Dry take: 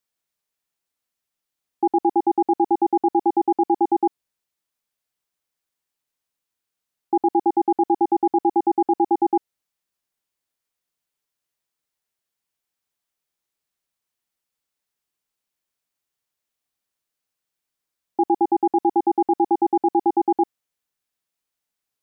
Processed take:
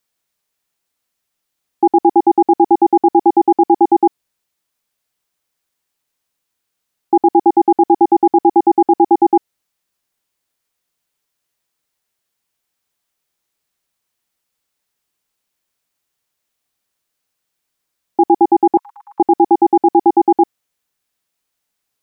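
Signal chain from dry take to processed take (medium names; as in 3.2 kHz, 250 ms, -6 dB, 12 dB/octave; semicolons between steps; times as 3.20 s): 18.77–19.20 s: steep high-pass 990 Hz 96 dB/octave; trim +8 dB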